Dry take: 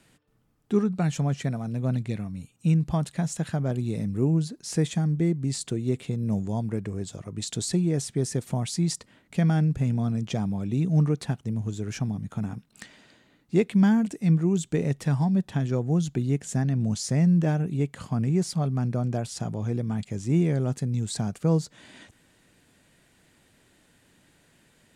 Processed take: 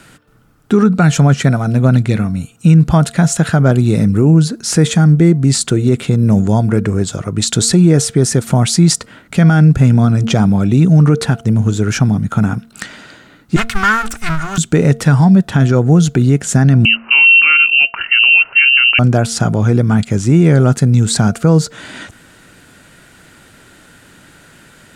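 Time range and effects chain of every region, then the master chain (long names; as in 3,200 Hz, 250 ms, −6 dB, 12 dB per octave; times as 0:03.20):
0:13.56–0:14.58: lower of the sound and its delayed copy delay 2.8 ms + drawn EQ curve 170 Hz 0 dB, 340 Hz −27 dB, 1,200 Hz +2 dB
0:16.85–0:18.99: voice inversion scrambler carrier 2,900 Hz + low-shelf EQ 150 Hz −8.5 dB
whole clip: parametric band 1,400 Hz +10.5 dB 0.29 octaves; hum removal 228.2 Hz, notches 3; boost into a limiter +18 dB; level −1 dB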